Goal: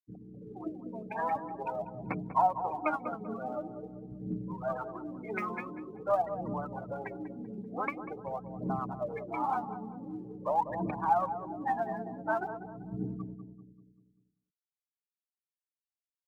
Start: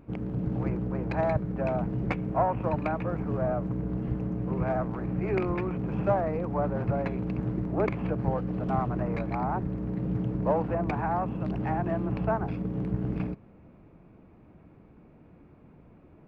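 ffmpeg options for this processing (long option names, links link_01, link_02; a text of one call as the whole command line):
ffmpeg -i in.wav -filter_complex "[0:a]afftfilt=real='re*gte(hypot(re,im),0.0398)':imag='im*gte(hypot(re,im),0.0398)':win_size=1024:overlap=0.75,highpass=230,lowshelf=frequency=730:width_type=q:width=1.5:gain=-7.5,aphaser=in_gain=1:out_gain=1:delay=4.9:decay=0.78:speed=0.46:type=triangular,asplit=2[link_01][link_02];[link_02]adelay=194,lowpass=frequency=970:poles=1,volume=-8.5dB,asplit=2[link_03][link_04];[link_04]adelay=194,lowpass=frequency=970:poles=1,volume=0.51,asplit=2[link_05][link_06];[link_06]adelay=194,lowpass=frequency=970:poles=1,volume=0.51,asplit=2[link_07][link_08];[link_08]adelay=194,lowpass=frequency=970:poles=1,volume=0.51,asplit=2[link_09][link_10];[link_10]adelay=194,lowpass=frequency=970:poles=1,volume=0.51,asplit=2[link_11][link_12];[link_12]adelay=194,lowpass=frequency=970:poles=1,volume=0.51[link_13];[link_01][link_03][link_05][link_07][link_09][link_11][link_13]amix=inputs=7:normalize=0,volume=-2dB" out.wav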